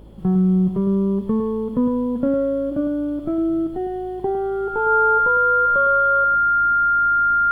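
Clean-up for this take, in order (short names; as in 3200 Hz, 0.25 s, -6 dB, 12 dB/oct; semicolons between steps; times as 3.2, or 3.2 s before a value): de-hum 53.8 Hz, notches 8; notch 1400 Hz, Q 30; inverse comb 0.107 s -8 dB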